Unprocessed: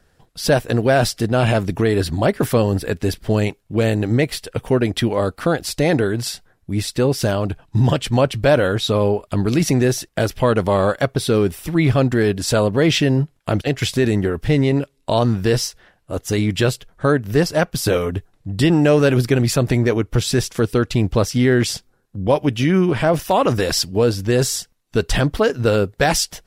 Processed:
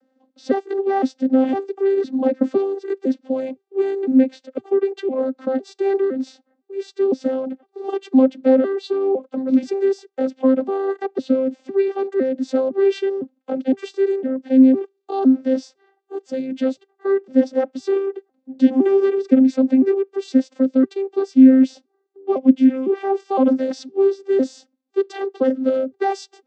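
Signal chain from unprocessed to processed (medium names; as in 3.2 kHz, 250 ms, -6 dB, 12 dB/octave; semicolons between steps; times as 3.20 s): vocoder on a broken chord bare fifth, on C4, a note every 508 ms; fifteen-band graphic EQ 250 Hz +11 dB, 630 Hz +12 dB, 4 kHz +3 dB; trim -8 dB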